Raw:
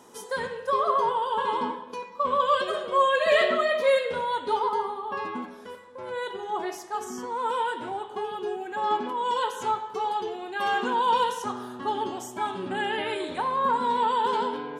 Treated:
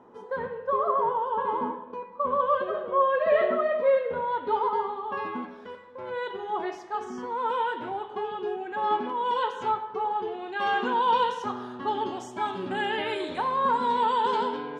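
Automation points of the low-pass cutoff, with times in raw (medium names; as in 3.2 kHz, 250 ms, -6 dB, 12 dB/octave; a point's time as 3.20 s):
4.08 s 1.3 kHz
4.92 s 3.3 kHz
9.66 s 3.3 kHz
10.11 s 1.6 kHz
10.50 s 4 kHz
11.80 s 4 kHz
12.70 s 6.5 kHz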